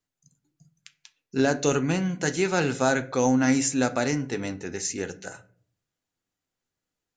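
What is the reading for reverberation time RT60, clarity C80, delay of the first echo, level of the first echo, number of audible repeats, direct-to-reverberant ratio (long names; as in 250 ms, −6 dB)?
0.45 s, 21.5 dB, no echo audible, no echo audible, no echo audible, 10.0 dB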